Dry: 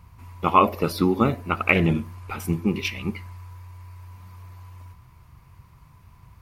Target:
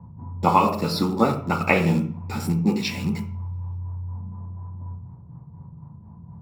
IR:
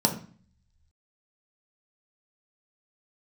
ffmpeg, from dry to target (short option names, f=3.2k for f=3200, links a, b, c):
-filter_complex "[0:a]acrossover=split=400|1200[a][b][c];[a]acompressor=threshold=-36dB:ratio=6[d];[b]tremolo=f=4.1:d=0.77[e];[c]acrusher=bits=6:mix=0:aa=0.000001[f];[d][e][f]amix=inputs=3:normalize=0[g];[1:a]atrim=start_sample=2205,asetrate=41895,aresample=44100[h];[g][h]afir=irnorm=-1:irlink=0,volume=-8dB"